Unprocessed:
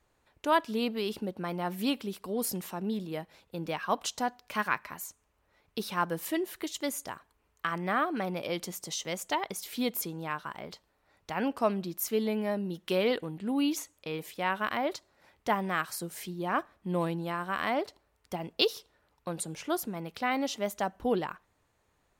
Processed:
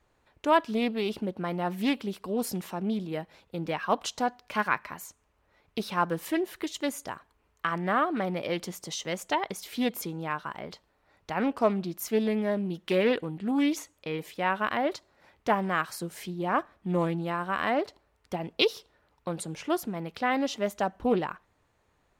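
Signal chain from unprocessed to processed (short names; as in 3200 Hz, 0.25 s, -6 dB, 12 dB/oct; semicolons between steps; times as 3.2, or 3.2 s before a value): high shelf 6400 Hz -8 dB; Doppler distortion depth 0.17 ms; gain +3 dB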